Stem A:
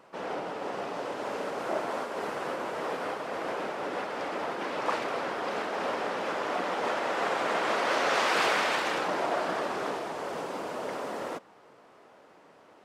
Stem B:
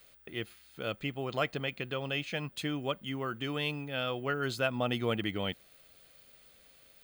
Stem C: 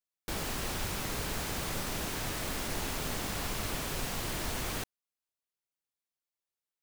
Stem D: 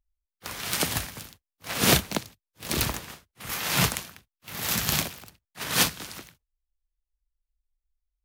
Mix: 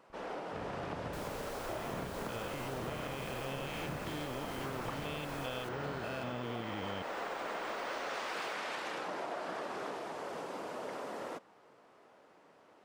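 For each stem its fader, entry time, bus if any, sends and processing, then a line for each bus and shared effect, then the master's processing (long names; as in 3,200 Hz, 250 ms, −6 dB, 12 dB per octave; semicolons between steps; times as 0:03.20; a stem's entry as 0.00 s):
−6.0 dB, 0.00 s, no send, no processing
−0.5 dB, 1.50 s, no send, spectrum averaged block by block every 200 ms
−11.0 dB, 0.85 s, no send, no processing
−15.5 dB, 0.10 s, no send, compressor on every frequency bin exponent 0.4; low-pass filter 1,300 Hz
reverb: not used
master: downward compressor, threshold −36 dBFS, peak gain reduction 8 dB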